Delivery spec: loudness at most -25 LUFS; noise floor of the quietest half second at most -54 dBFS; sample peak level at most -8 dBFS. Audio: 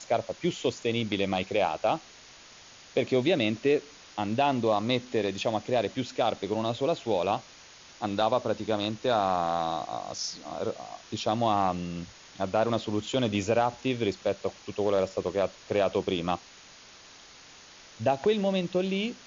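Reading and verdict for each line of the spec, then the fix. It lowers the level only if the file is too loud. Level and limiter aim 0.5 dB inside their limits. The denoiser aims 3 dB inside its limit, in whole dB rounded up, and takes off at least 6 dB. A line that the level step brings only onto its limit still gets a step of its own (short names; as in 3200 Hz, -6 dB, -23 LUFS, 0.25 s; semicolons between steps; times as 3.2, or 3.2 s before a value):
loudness -28.5 LUFS: OK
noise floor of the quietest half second -51 dBFS: fail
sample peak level -11.5 dBFS: OK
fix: denoiser 6 dB, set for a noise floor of -51 dBFS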